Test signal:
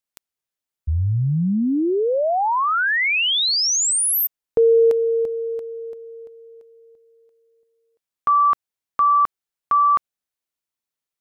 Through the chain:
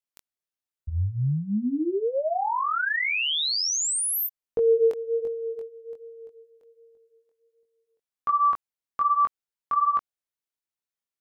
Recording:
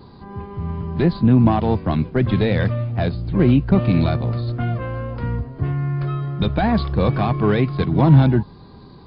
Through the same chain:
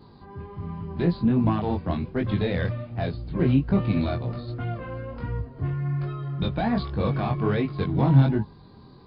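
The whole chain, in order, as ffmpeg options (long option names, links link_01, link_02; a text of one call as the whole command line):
ffmpeg -i in.wav -af "flanger=delay=19:depth=4.2:speed=1.3,volume=-3.5dB" out.wav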